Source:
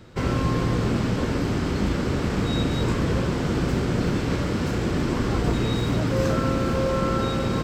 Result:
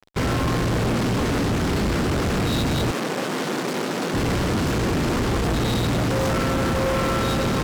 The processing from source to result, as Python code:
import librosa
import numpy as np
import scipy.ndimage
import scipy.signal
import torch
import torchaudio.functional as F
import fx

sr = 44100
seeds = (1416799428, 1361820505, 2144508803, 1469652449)

y = fx.fuzz(x, sr, gain_db=31.0, gate_db=-40.0)
y = fx.bessel_highpass(y, sr, hz=270.0, order=8, at=(2.91, 4.14))
y = y * 10.0 ** (-6.5 / 20.0)